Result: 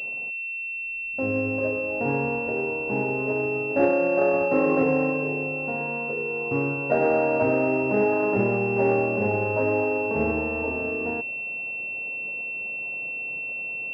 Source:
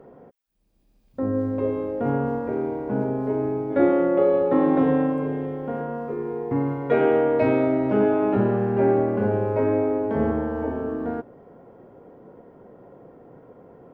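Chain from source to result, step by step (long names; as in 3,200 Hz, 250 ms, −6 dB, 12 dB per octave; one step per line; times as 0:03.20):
formants moved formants +3 semitones
switching amplifier with a slow clock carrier 2,700 Hz
level −2 dB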